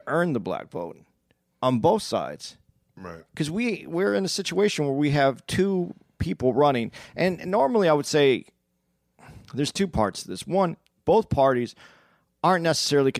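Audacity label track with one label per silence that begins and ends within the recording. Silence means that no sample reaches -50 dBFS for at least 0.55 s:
8.490000	9.190000	silence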